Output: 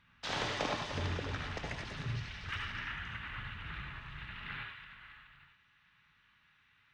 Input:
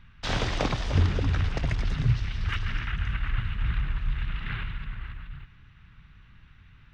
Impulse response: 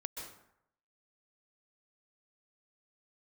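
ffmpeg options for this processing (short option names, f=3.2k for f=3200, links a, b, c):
-filter_complex "[0:a]asetnsamples=n=441:p=0,asendcmd='4.59 highpass f 1200',highpass=f=360:p=1[a];[1:a]atrim=start_sample=2205,afade=t=out:st=0.26:d=0.01,atrim=end_sample=11907,asetrate=79380,aresample=44100[b];[a][b]afir=irnorm=-1:irlink=0,volume=2dB"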